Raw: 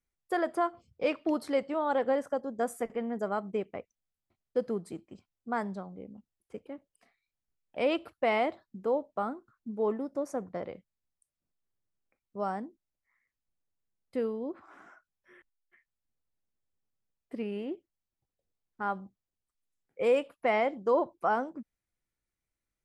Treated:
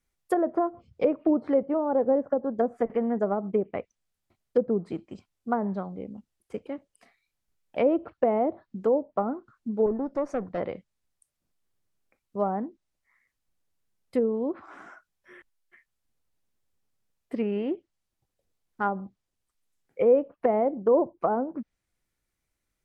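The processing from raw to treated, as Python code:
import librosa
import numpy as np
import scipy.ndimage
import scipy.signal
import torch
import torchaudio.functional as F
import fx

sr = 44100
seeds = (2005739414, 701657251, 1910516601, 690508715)

y = fx.tube_stage(x, sr, drive_db=27.0, bias=0.35, at=(9.86, 10.58))
y = fx.env_lowpass_down(y, sr, base_hz=570.0, full_db=-27.0)
y = y * librosa.db_to_amplitude(7.5)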